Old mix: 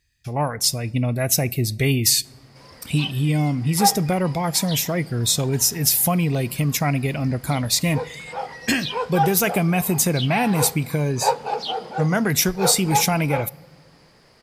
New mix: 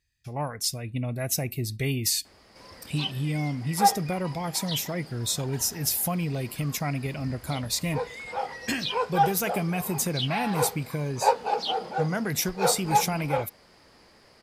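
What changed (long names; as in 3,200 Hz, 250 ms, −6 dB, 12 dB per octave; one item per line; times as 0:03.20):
speech −7.5 dB
reverb: off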